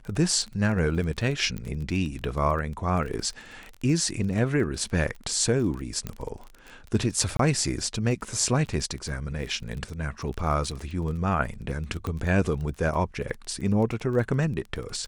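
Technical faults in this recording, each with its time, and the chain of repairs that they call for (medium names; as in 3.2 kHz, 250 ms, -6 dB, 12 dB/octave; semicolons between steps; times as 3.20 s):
crackle 22 per s -32 dBFS
1.58 s: pop -22 dBFS
6.07 s: pop -18 dBFS
7.37–7.39 s: dropout 23 ms
12.07 s: pop -19 dBFS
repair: de-click; interpolate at 7.37 s, 23 ms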